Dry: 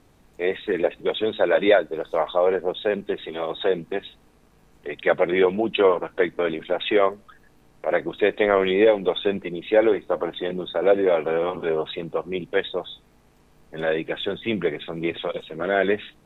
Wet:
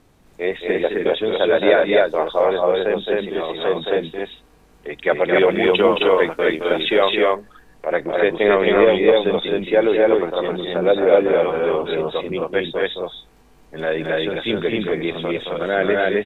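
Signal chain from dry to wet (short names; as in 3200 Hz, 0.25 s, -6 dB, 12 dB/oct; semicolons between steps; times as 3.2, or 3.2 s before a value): 5.34–7.09 high shelf 3200 Hz +8.5 dB; loudspeakers at several distances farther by 75 m -6 dB, 90 m -1 dB; gain +1.5 dB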